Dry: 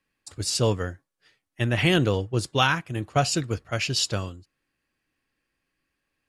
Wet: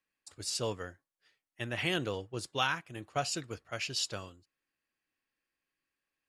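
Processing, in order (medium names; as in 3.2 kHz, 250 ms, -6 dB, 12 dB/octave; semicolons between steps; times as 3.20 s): bass shelf 260 Hz -10 dB; trim -8.5 dB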